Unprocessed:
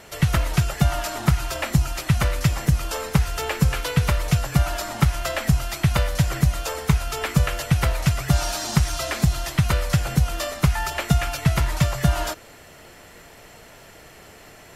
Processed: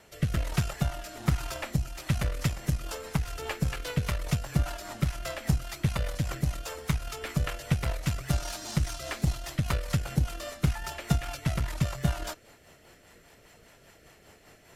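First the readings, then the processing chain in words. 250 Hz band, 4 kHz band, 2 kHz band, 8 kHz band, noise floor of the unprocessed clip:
-8.0 dB, -9.5 dB, -9.5 dB, -9.5 dB, -46 dBFS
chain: rotary cabinet horn 1.2 Hz, later 5 Hz, at 1.81 s; Chebyshev shaper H 3 -21 dB, 8 -25 dB, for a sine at -5 dBFS; trim -5 dB

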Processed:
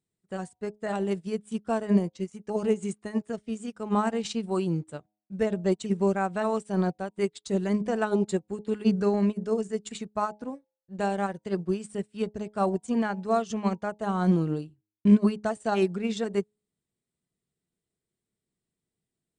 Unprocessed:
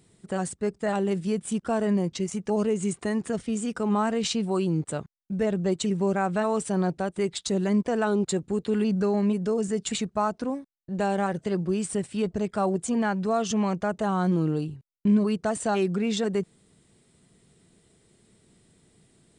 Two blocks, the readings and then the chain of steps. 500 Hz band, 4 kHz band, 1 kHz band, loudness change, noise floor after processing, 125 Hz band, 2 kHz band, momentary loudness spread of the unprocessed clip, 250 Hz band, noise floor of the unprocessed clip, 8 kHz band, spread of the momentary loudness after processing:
-1.5 dB, -6.5 dB, -1.5 dB, -1.5 dB, under -85 dBFS, -2.0 dB, -2.5 dB, 6 LU, -1.5 dB, -64 dBFS, -9.5 dB, 11 LU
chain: de-hum 105.2 Hz, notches 9; upward expansion 2.5:1, over -41 dBFS; trim +6.5 dB

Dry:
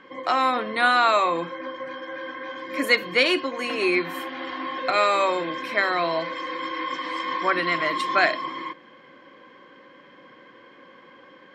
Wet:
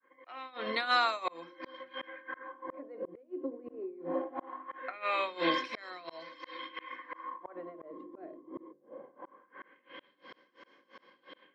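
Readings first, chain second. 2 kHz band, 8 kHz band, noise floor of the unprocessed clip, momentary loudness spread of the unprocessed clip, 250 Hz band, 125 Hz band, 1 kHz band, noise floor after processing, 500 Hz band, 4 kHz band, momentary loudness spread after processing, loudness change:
-14.5 dB, under -15 dB, -50 dBFS, 14 LU, -11.5 dB, -15.0 dB, -13.0 dB, -71 dBFS, -13.5 dB, -11.5 dB, 22 LU, -13.0 dB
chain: fade-in on the opening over 1.49 s; tremolo 2.9 Hz, depth 91%; high-pass 230 Hz 12 dB/octave; transient shaper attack +3 dB, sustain -3 dB; hum notches 50/100/150/200/250/300/350/400 Hz; LFO low-pass sine 0.21 Hz 380–5900 Hz; compression 16:1, threshold -31 dBFS, peak gain reduction 17 dB; slow attack 687 ms; trim +7 dB

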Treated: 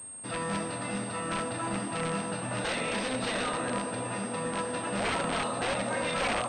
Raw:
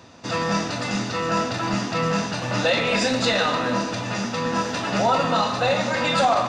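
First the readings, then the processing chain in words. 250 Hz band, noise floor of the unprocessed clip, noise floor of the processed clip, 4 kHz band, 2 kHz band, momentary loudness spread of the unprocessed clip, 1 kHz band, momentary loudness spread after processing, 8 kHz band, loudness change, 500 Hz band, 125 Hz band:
-9.0 dB, -30 dBFS, -37 dBFS, -10.5 dB, -8.0 dB, 6 LU, -10.0 dB, 4 LU, -2.5 dB, -9.0 dB, -9.5 dB, -9.5 dB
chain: integer overflow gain 14 dB; feedback echo behind a band-pass 290 ms, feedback 74%, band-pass 490 Hz, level -6.5 dB; class-D stage that switches slowly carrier 8.5 kHz; trim -9 dB

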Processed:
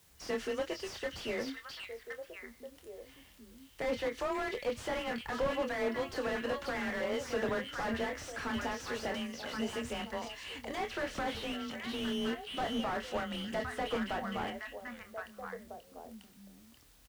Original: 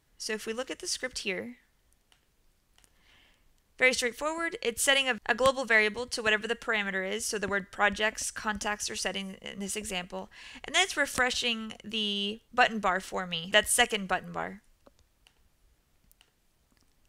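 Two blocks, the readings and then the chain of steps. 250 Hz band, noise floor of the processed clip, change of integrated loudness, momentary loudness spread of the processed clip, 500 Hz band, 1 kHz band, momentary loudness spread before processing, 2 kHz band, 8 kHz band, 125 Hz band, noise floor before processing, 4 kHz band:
-0.5 dB, -60 dBFS, -8.5 dB, 16 LU, -3.5 dB, -6.0 dB, 12 LU, -11.0 dB, -16.0 dB, -3.0 dB, -71 dBFS, -11.0 dB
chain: low-pass that closes with the level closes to 1.9 kHz, closed at -22 dBFS; peak limiter -20.5 dBFS, peak gain reduction 9.5 dB; added noise white -66 dBFS; frequency shift +26 Hz; doubling 26 ms -9 dB; on a send: repeats whose band climbs or falls 533 ms, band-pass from 3.7 kHz, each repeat -1.4 oct, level -4 dB; on the sum: slew-rate limiter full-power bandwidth 24 Hz

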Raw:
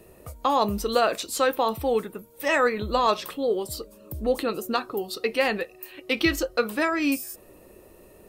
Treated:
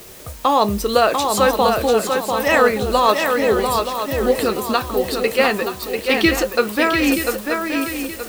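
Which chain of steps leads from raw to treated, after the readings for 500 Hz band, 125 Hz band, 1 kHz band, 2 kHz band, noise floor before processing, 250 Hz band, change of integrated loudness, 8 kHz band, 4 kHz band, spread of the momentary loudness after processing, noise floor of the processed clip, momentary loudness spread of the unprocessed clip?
+8.0 dB, +8.5 dB, +8.0 dB, +8.0 dB, -52 dBFS, +8.0 dB, +7.5 dB, +9.0 dB, +8.5 dB, 7 LU, -34 dBFS, 12 LU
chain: added noise white -48 dBFS; shuffle delay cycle 925 ms, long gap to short 3:1, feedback 36%, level -5 dB; trim +6.5 dB

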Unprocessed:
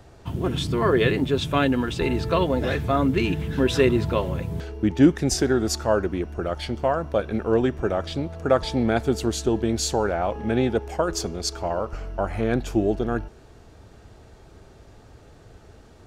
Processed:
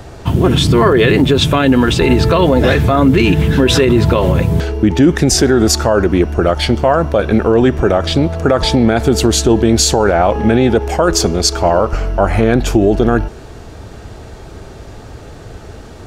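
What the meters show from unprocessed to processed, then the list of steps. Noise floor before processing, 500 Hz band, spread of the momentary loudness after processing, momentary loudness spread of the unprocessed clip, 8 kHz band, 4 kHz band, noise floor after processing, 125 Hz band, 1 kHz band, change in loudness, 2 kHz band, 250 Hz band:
-50 dBFS, +10.5 dB, 4 LU, 9 LU, +14.0 dB, +14.0 dB, -34 dBFS, +13.0 dB, +11.0 dB, +11.5 dB, +11.0 dB, +11.0 dB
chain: loudness maximiser +17 dB; trim -1 dB

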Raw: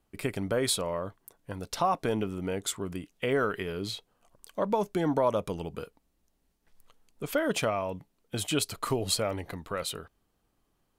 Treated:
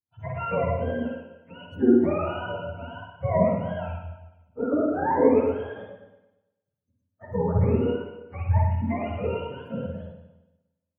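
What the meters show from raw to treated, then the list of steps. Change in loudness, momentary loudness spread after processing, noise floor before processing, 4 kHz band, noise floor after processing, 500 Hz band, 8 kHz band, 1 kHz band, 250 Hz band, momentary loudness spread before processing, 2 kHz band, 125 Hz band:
+5.0 dB, 19 LU, -75 dBFS, under -10 dB, -83 dBFS, +5.0 dB, under -40 dB, +2.5 dB, +7.5 dB, 14 LU, -1.5 dB, +10.0 dB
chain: spectrum inverted on a logarithmic axis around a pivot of 520 Hz; spring tank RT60 1.5 s, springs 50/58 ms, chirp 20 ms, DRR -3 dB; spectral contrast expander 1.5:1; trim +4.5 dB

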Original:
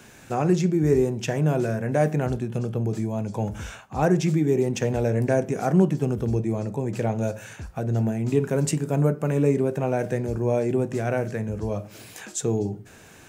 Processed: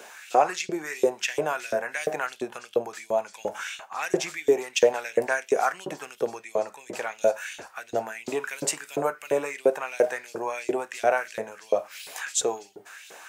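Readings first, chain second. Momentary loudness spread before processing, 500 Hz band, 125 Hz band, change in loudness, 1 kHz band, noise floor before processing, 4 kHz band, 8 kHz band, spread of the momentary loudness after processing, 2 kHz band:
10 LU, -0.5 dB, -26.0 dB, -3.0 dB, +3.5 dB, -48 dBFS, +6.0 dB, +4.0 dB, 12 LU, +5.5 dB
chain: LFO high-pass saw up 2.9 Hz 450–3900 Hz; trim +3 dB

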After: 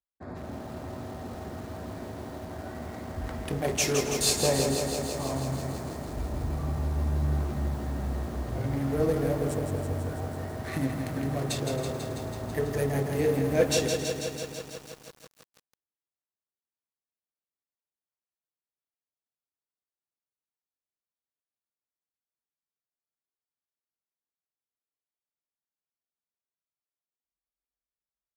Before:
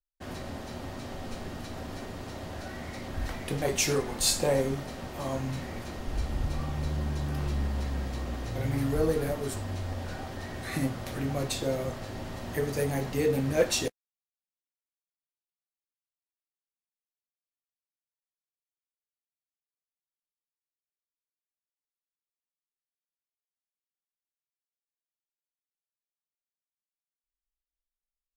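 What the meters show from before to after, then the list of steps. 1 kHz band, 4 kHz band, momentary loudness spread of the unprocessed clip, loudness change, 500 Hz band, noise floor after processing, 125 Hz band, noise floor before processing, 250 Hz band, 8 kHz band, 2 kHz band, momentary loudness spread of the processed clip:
+1.5 dB, +1.0 dB, 13 LU, +1.5 dB, +2.0 dB, under -85 dBFS, +2.0 dB, under -85 dBFS, +2.0 dB, +1.5 dB, 0.0 dB, 14 LU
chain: local Wiener filter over 15 samples; high-pass 51 Hz 24 dB/octave; peaking EQ 570 Hz +2.5 dB 0.53 oct; band-stop 540 Hz, Q 12; on a send: feedback delay 271 ms, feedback 38%, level -16 dB; on the sum: bit-crushed delay 164 ms, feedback 80%, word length 8-bit, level -5.5 dB

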